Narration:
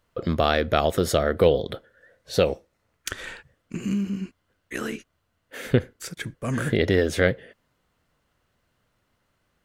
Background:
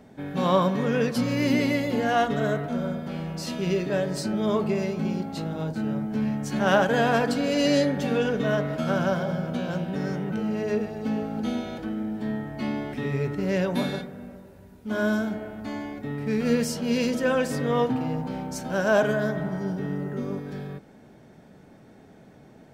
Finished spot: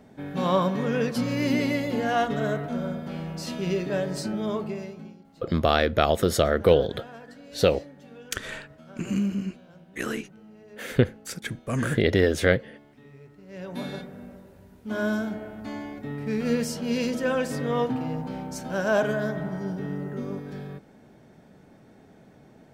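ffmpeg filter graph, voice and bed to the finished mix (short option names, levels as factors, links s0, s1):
-filter_complex "[0:a]adelay=5250,volume=1[s0];[1:a]volume=8.41,afade=t=out:st=4.21:d=0.96:silence=0.0944061,afade=t=in:st=13.48:d=0.67:silence=0.1[s1];[s0][s1]amix=inputs=2:normalize=0"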